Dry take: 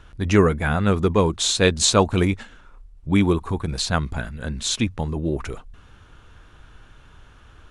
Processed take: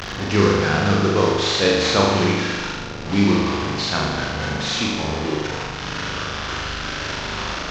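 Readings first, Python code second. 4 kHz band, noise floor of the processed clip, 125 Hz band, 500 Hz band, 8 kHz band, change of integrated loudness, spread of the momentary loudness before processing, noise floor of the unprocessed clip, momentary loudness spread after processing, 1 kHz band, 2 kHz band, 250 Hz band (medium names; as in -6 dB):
+4.0 dB, -30 dBFS, 0.0 dB, +2.0 dB, -4.5 dB, +0.5 dB, 13 LU, -50 dBFS, 9 LU, +4.5 dB, +6.0 dB, +1.5 dB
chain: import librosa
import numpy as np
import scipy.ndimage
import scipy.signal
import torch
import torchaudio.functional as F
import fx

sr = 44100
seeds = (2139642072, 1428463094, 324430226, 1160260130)

y = fx.delta_mod(x, sr, bps=32000, step_db=-19.0)
y = fx.highpass(y, sr, hz=150.0, slope=6)
y = fx.room_flutter(y, sr, wall_m=6.8, rt60_s=1.4)
y = F.gain(torch.from_numpy(y), -2.5).numpy()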